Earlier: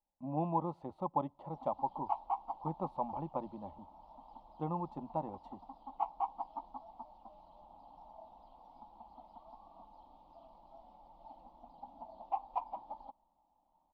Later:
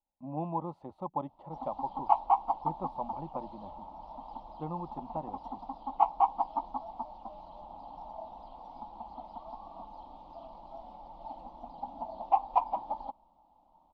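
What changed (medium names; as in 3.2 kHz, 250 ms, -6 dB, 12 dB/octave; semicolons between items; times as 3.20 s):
speech: send off; background +10.5 dB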